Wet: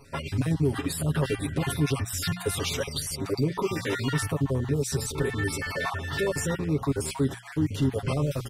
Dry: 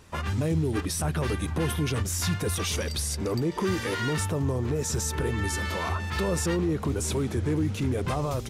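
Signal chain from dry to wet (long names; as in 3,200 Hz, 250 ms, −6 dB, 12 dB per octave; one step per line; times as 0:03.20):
time-frequency cells dropped at random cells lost 32%
parametric band 6,500 Hz −7 dB 0.24 octaves
mains-hum notches 60/120/180 Hz
comb filter 7.3 ms, depth 80%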